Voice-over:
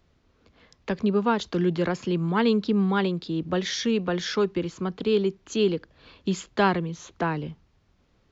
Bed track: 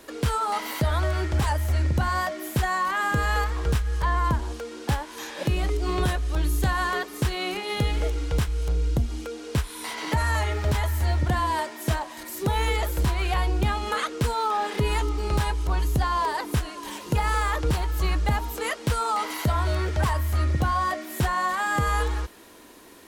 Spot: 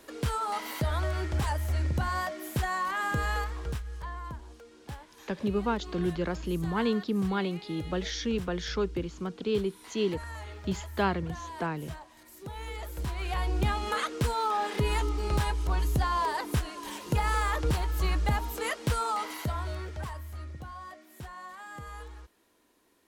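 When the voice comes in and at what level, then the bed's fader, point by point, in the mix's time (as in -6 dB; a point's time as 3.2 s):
4.40 s, -6.0 dB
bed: 3.27 s -5.5 dB
4.23 s -16.5 dB
12.54 s -16.5 dB
13.63 s -3.5 dB
18.97 s -3.5 dB
20.6 s -19 dB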